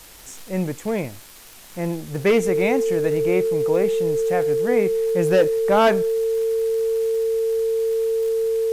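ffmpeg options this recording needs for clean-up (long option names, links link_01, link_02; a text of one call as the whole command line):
ffmpeg -i in.wav -af "adeclick=threshold=4,bandreject=frequency=450:width=30,afwtdn=0.0063" out.wav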